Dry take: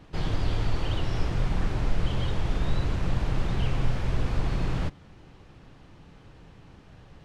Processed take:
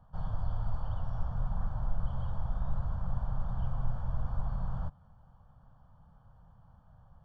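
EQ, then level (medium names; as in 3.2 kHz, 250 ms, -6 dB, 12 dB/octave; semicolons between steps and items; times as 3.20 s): Savitzky-Golay filter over 41 samples; peaking EQ 360 Hz -14 dB 0.64 oct; static phaser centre 850 Hz, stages 4; -5.5 dB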